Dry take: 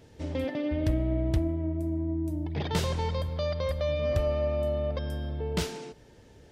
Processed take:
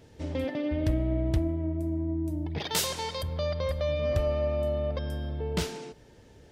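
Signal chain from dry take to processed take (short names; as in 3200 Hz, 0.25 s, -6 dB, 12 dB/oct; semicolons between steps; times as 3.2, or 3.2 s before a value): 2.58–3.23 RIAA curve recording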